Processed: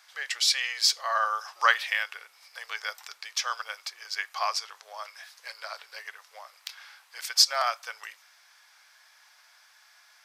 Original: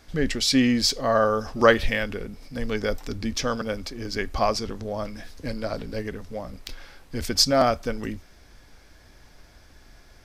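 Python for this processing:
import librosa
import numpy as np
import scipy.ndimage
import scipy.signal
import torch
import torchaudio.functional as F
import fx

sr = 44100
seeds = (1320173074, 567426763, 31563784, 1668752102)

y = scipy.signal.sosfilt(scipy.signal.cheby2(4, 60, 270.0, 'highpass', fs=sr, output='sos'), x)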